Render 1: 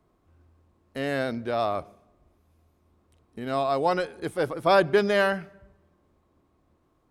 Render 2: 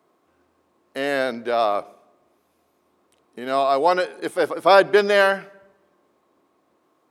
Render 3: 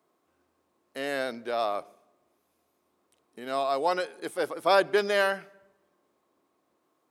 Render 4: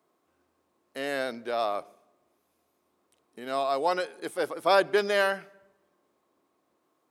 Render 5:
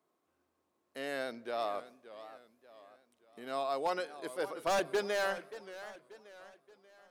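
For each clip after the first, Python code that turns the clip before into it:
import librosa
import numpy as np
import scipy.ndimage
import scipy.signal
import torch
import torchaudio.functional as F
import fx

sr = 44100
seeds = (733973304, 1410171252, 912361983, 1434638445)

y1 = scipy.signal.sosfilt(scipy.signal.butter(2, 330.0, 'highpass', fs=sr, output='sos'), x)
y1 = y1 * librosa.db_to_amplitude(6.5)
y2 = fx.high_shelf(y1, sr, hz=4500.0, db=6.0)
y2 = y2 * librosa.db_to_amplitude(-8.5)
y3 = y2
y4 = 10.0 ** (-17.0 / 20.0) * (np.abs((y3 / 10.0 ** (-17.0 / 20.0) + 3.0) % 4.0 - 2.0) - 1.0)
y4 = fx.echo_warbled(y4, sr, ms=581, feedback_pct=43, rate_hz=2.8, cents=162, wet_db=-14.5)
y4 = y4 * librosa.db_to_amplitude(-7.0)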